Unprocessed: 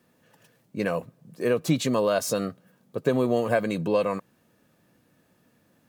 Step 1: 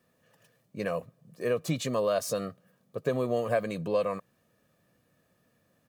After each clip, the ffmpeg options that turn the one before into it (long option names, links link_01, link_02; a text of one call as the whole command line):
ffmpeg -i in.wav -af "aecho=1:1:1.7:0.36,volume=-5.5dB" out.wav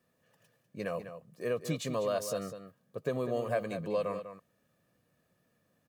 ffmpeg -i in.wav -filter_complex "[0:a]asplit=2[link_01][link_02];[link_02]adelay=198.3,volume=-10dB,highshelf=frequency=4000:gain=-4.46[link_03];[link_01][link_03]amix=inputs=2:normalize=0,volume=-4.5dB" out.wav